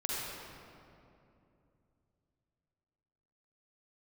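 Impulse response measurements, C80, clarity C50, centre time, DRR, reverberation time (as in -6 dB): -2.5 dB, -5.0 dB, 0.169 s, -5.5 dB, 2.7 s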